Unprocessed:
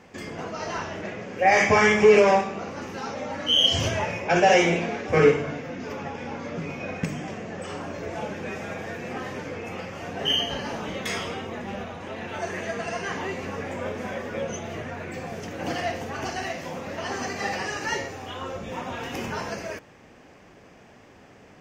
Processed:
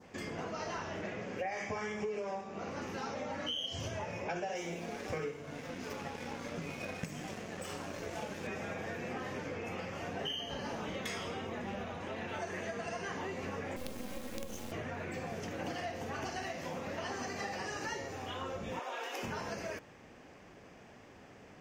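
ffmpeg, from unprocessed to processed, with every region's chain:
-filter_complex "[0:a]asettb=1/sr,asplit=3[s0][s1][s2];[s0]atrim=end=4.554[s3];[s1]atrim=start=4.55:end=8.47,asetpts=PTS-STARTPTS,afade=t=in:d=0.004:c=qsin,afade=t=out:st=3.916:d=0.004:c=qsin,highshelf=f=4900:g=10,aeval=exprs='sgn(val(0))*max(abs(val(0))-0.00891,0)':c=same[s4];[s2]atrim=start=8.466[s5];[s3][s4]acrossfade=d=0.004:c1=hsin:c2=qsin[s6];[s6][s5]acrossfade=d=0.004:c1=qsin:c2=hsin,asettb=1/sr,asplit=3[s7][s8][s9];[s7]atrim=end=13.764[s10];[s8]atrim=start=13.76:end=14.72,asetpts=PTS-STARTPTS,afade=t=in:d=0.004:c=qsin,afade=t=out:st=0.956:d=0.004:c=qsin,aecho=1:1:3.7:0.7,atrim=end_sample=42336,acrusher=bits=4:dc=4:mix=0:aa=0.000001,acrossover=split=480|3000[s11][s12][s13];[s12]acompressor=threshold=0.00562:ratio=4:attack=3.2:release=140:knee=2.83:detection=peak[s14];[s11][s14][s13]amix=inputs=3:normalize=0[s15];[s9]atrim=start=14.716[s16];[s10][s15]acrossfade=d=0.004:c1=hsin:c2=qsin[s17];[s17][s16]acrossfade=d=0.004:c1=qsin:c2=hsin,asettb=1/sr,asplit=3[s18][s19][s20];[s18]atrim=end=18.794[s21];[s19]atrim=start=18.79:end=19.23,asetpts=PTS-STARTPTS,afade=t=in:d=0.004:c=qsin,afade=t=out:st=0.436:d=0.004:c=qsin,highpass=f=410:w=0.5412,highpass=f=410:w=1.3066,bandreject=f=2000:w=22[s22];[s20]atrim=start=19.226[s23];[s21][s22]acrossfade=d=0.004:c1=hsin:c2=qsin[s24];[s24][s23]acrossfade=d=0.004:c1=qsin:c2=hsin,adynamicequalizer=threshold=0.0141:dfrequency=2300:dqfactor=1.1:tfrequency=2300:tqfactor=1.1:attack=5:release=100:ratio=0.375:range=3:mode=cutabove:tftype=bell,acompressor=threshold=0.0282:ratio=10,volume=0.596"

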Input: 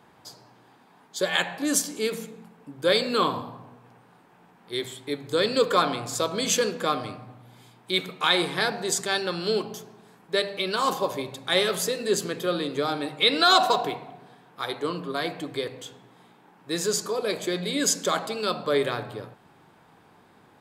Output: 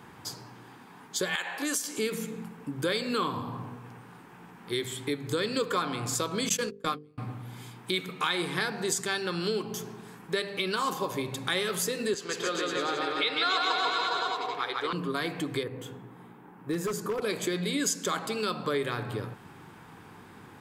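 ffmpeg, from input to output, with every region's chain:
-filter_complex "[0:a]asettb=1/sr,asplit=3[s0][s1][s2];[s0]atrim=end=1.354[s3];[s1]atrim=start=1.35:end=1.98,asetpts=PTS-STARTPTS,afade=t=in:d=0.004:c=qsin,afade=t=out:st=0.626:d=0.004:c=qsin,highpass=460,acompressor=threshold=0.0562:ratio=3:attack=3.2:release=140:knee=1:detection=peak[s4];[s2]atrim=start=1.976[s5];[s3][s4]acrossfade=d=0.004:c1=hsin:c2=qsin[s6];[s6][s5]acrossfade=d=0.004:c1=qsin:c2=hsin,asettb=1/sr,asplit=3[s7][s8][s9];[s7]atrim=end=6.494[s10];[s8]atrim=start=6.49:end=7.18,asetpts=PTS-STARTPTS,afade=t=in:d=0.004:c=qsin,afade=t=out:st=0.686:d=0.004:c=qsin,agate=range=0.0158:threshold=0.0501:ratio=16:release=100:detection=peak,bass=f=250:g=3,treble=f=4000:g=2,bandreject=f=50:t=h:w=6,bandreject=f=100:t=h:w=6,bandreject=f=150:t=h:w=6,bandreject=f=200:t=h:w=6,bandreject=f=250:t=h:w=6,bandreject=f=300:t=h:w=6,bandreject=f=350:t=h:w=6,bandreject=f=400:t=h:w=6,bandreject=f=450:t=h:w=6,bandreject=f=500:t=h:w=6[s11];[s9]atrim=start=7.176[s12];[s10][s11]acrossfade=d=0.004:c1=hsin:c2=qsin[s13];[s13][s12]acrossfade=d=0.004:c1=qsin:c2=hsin,asettb=1/sr,asplit=3[s14][s15][s16];[s14]atrim=end=12.144[s17];[s15]atrim=start=12.14:end=14.93,asetpts=PTS-STARTPTS,afade=t=in:d=0.004:c=qsin,afade=t=out:st=2.786:d=0.004:c=qsin,acrossover=split=410 6300:gain=0.158 1 0.112[s18][s19][s20];[s18][s19][s20]amix=inputs=3:normalize=0,aecho=1:1:150|285|406.5|515.8|614.3|702.8|782.6:0.794|0.631|0.501|0.398|0.316|0.251|0.2,atrim=end_sample=123039[s21];[s16]atrim=start=14.926[s22];[s17][s21]acrossfade=d=0.004:c1=hsin:c2=qsin[s23];[s23][s22]acrossfade=d=0.004:c1=qsin:c2=hsin,asettb=1/sr,asplit=3[s24][s25][s26];[s24]atrim=end=15.634[s27];[s25]atrim=start=15.63:end=17.22,asetpts=PTS-STARTPTS,afade=t=in:d=0.004:c=qsin,afade=t=out:st=1.586:d=0.004:c=qsin,equalizer=f=5500:w=0.44:g=-15,aeval=exprs='0.0668*(abs(mod(val(0)/0.0668+3,4)-2)-1)':c=same[s28];[s26]atrim=start=17.216[s29];[s27][s28]acrossfade=d=0.004:c1=hsin:c2=qsin[s30];[s30][s29]acrossfade=d=0.004:c1=qsin:c2=hsin,equalizer=f=100:t=o:w=0.67:g=3,equalizer=f=630:t=o:w=0.67:g=-9,equalizer=f=4000:t=o:w=0.67:g=-4,acompressor=threshold=0.0126:ratio=3,volume=2.51"

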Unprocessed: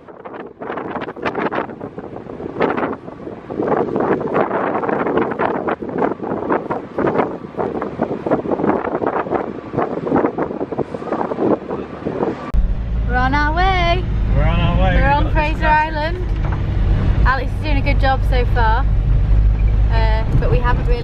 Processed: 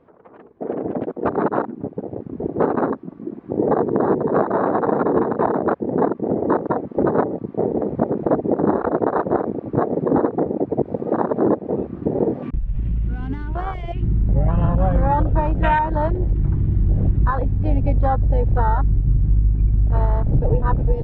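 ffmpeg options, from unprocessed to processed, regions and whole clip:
-filter_complex "[0:a]asettb=1/sr,asplit=3[s0][s1][s2];[s0]atrim=end=12.424[s3];[s1]atrim=start=12.42:end=14.03,asetpts=PTS-STARTPTS,afade=t=in:d=0.004:c=qsin,afade=t=out:st=1.606:d=0.004:c=qsin,equalizer=f=2700:t=o:w=1.1:g=12,acompressor=threshold=0.112:ratio=10:attack=3.2:release=140:knee=1:detection=peak,asoftclip=type=hard:threshold=0.119[s4];[s2]atrim=start=14.026[s5];[s3][s4]acrossfade=d=0.004:c1=hsin:c2=qsin[s6];[s6][s5]acrossfade=d=0.004:c1=qsin:c2=hsin,lowpass=f=1400:p=1,afwtdn=0.1,acompressor=threshold=0.126:ratio=2.5,volume=1.41"

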